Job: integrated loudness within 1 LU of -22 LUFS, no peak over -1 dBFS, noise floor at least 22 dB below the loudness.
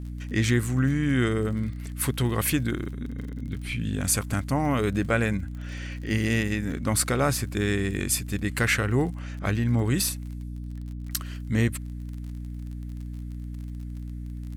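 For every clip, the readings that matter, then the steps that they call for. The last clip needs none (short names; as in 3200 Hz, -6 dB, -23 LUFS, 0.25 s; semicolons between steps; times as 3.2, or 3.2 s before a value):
ticks 41/s; hum 60 Hz; harmonics up to 300 Hz; hum level -32 dBFS; loudness -26.5 LUFS; peak -9.5 dBFS; loudness target -22.0 LUFS
-> de-click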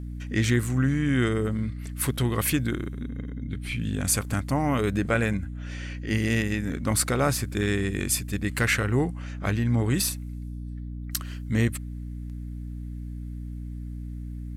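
ticks 0.34/s; hum 60 Hz; harmonics up to 300 Hz; hum level -32 dBFS
-> de-hum 60 Hz, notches 5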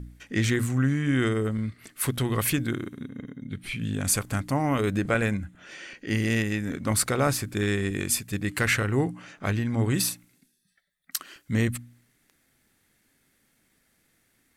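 hum none; loudness -27.0 LUFS; peak -10.0 dBFS; loudness target -22.0 LUFS
-> gain +5 dB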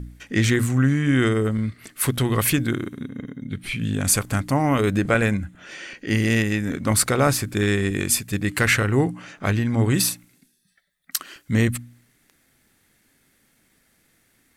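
loudness -22.0 LUFS; peak -5.0 dBFS; noise floor -64 dBFS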